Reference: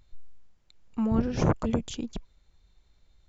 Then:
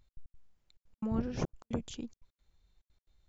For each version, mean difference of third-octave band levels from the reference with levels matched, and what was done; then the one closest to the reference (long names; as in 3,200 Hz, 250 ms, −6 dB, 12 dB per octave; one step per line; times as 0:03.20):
6.0 dB: gate pattern "x.x.xxxx" 176 BPM −60 dB
level −7.5 dB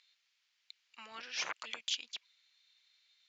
14.0 dB: flat-topped band-pass 3,400 Hz, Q 0.99
level +7 dB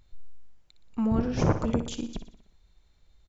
2.5 dB: repeating echo 60 ms, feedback 54%, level −11 dB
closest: third